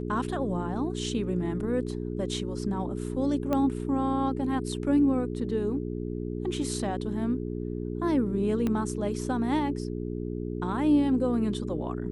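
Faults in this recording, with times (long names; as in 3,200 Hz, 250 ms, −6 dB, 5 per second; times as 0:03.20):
mains hum 60 Hz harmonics 7 −33 dBFS
0:03.53: click −16 dBFS
0:08.67: click −17 dBFS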